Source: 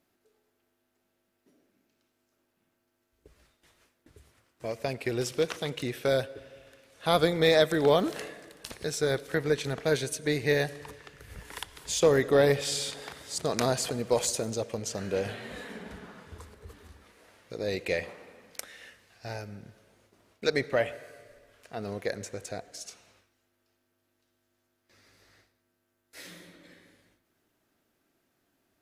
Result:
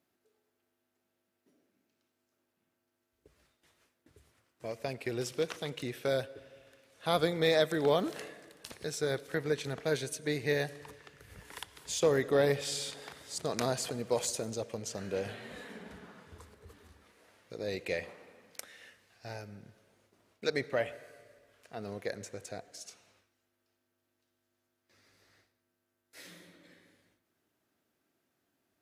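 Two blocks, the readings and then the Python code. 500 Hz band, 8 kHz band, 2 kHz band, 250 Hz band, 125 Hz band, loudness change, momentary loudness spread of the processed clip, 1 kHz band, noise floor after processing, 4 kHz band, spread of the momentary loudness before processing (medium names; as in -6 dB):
-5.0 dB, -5.0 dB, -5.0 dB, -5.0 dB, -5.5 dB, -5.0 dB, 22 LU, -5.0 dB, -82 dBFS, -5.0 dB, 22 LU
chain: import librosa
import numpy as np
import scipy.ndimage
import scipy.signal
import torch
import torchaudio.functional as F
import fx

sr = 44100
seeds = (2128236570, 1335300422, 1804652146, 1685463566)

y = scipy.signal.sosfilt(scipy.signal.butter(2, 70.0, 'highpass', fs=sr, output='sos'), x)
y = F.gain(torch.from_numpy(y), -5.0).numpy()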